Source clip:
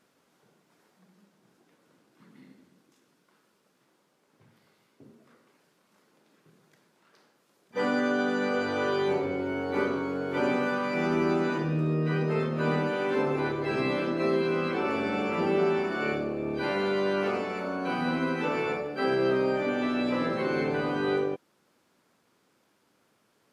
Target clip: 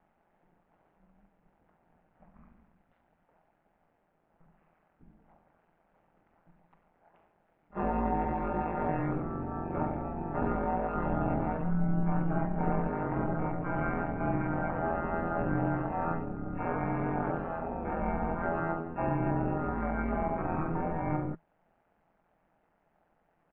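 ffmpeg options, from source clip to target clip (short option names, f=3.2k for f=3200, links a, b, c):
-af "highpass=f=120:w=0.5412,highpass=f=120:w=1.3066,equalizer=f=140:t=q:w=4:g=9,equalizer=f=310:t=q:w=4:g=-7,equalizer=f=510:t=q:w=4:g=-4,equalizer=f=1.3k:t=q:w=4:g=8,equalizer=f=2.6k:t=q:w=4:g=4,lowpass=f=4k:w=0.5412,lowpass=f=4k:w=1.3066,aeval=exprs='val(0)*sin(2*PI*150*n/s)':c=same,asetrate=24750,aresample=44100,atempo=1.7818"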